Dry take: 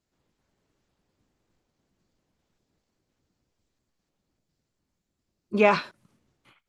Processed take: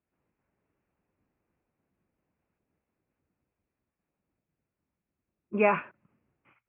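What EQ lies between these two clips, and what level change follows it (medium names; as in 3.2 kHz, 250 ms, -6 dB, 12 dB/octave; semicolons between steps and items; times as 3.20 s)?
high-pass 40 Hz; elliptic low-pass 2.6 kHz, stop band 40 dB; hum notches 60/120 Hz; -3.5 dB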